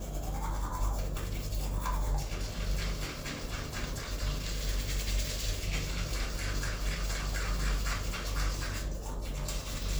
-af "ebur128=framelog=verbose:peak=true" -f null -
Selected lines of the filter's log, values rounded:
Integrated loudness:
  I:         -35.6 LUFS
  Threshold: -45.6 LUFS
Loudness range:
  LRA:         1.7 LU
  Threshold: -55.4 LUFS
  LRA low:   -36.2 LUFS
  LRA high:  -34.5 LUFS
True peak:
  Peak:      -19.6 dBFS